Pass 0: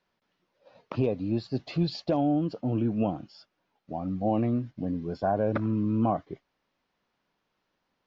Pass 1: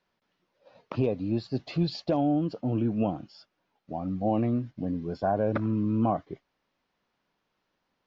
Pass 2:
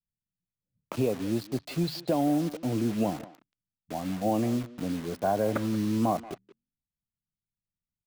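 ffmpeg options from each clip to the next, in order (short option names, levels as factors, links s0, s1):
-af anull
-filter_complex "[0:a]acrossover=split=160[s0][s1];[s0]flanger=delay=8.6:depth=7.8:regen=-88:speed=0.58:shape=sinusoidal[s2];[s1]acrusher=bits=6:mix=0:aa=0.000001[s3];[s2][s3]amix=inputs=2:normalize=0,asplit=2[s4][s5];[s5]adelay=180,highpass=300,lowpass=3400,asoftclip=type=hard:threshold=0.0562,volume=0.178[s6];[s4][s6]amix=inputs=2:normalize=0"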